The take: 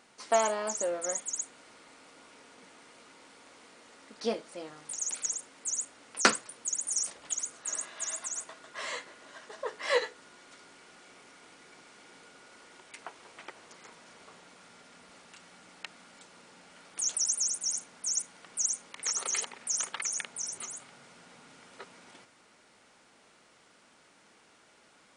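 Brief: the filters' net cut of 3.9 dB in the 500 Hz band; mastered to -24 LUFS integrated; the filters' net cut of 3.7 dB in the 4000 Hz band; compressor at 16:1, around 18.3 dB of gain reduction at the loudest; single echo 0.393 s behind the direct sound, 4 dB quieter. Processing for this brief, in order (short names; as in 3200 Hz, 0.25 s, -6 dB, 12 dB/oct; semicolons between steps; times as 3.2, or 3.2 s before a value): bell 500 Hz -5 dB; bell 4000 Hz -5.5 dB; compressor 16:1, threshold -36 dBFS; echo 0.393 s -4 dB; gain +16 dB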